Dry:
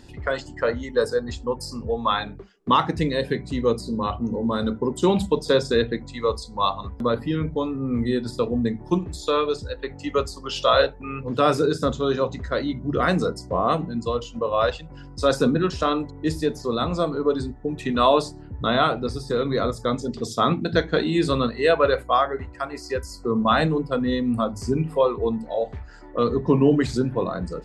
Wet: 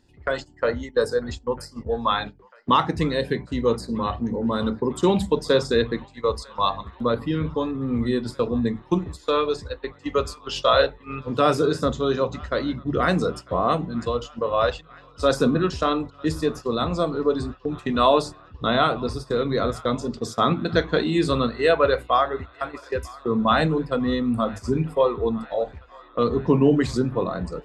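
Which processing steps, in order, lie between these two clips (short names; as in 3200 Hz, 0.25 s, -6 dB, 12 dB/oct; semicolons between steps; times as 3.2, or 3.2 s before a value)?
gate -31 dBFS, range -14 dB; on a send: band-limited delay 0.947 s, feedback 73%, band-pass 1600 Hz, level -21 dB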